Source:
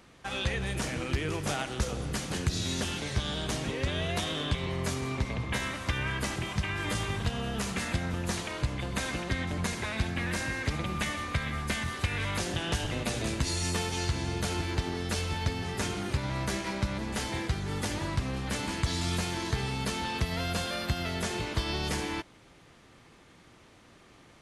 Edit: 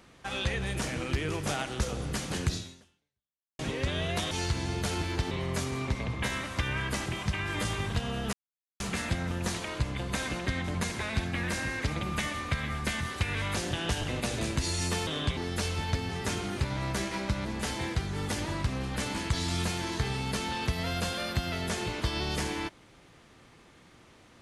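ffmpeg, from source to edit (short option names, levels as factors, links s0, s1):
-filter_complex "[0:a]asplit=7[s0][s1][s2][s3][s4][s5][s6];[s0]atrim=end=3.59,asetpts=PTS-STARTPTS,afade=t=out:st=2.53:d=1.06:c=exp[s7];[s1]atrim=start=3.59:end=4.312,asetpts=PTS-STARTPTS,afade=t=in:d=0.004:c=hsin[s8];[s2]atrim=start=13.898:end=14.902[s9];[s3]atrim=start=4.608:end=7.63,asetpts=PTS-STARTPTS,afade=t=out:st=3.018:d=0.004:c=hsin,apad=pad_dur=0.47[s10];[s4]atrim=start=7.63:end=13.902,asetpts=PTS-STARTPTS,afade=t=in:d=0.004:c=hsin[s11];[s5]atrim=start=4.308:end=4.612[s12];[s6]atrim=start=14.898[s13];[s7][s8]concat=n=2:v=0:a=1[s14];[s14][s9]acrossfade=d=0.004:c1=hsin:c2=hsin[s15];[s10][s11]concat=n=2:v=0:a=1[s16];[s15][s16]acrossfade=d=0.004:c1=hsin:c2=hsin[s17];[s17][s12]acrossfade=d=0.004:c1=hsin:c2=hsin[s18];[s18][s13]acrossfade=d=0.004:c1=hsin:c2=hsin"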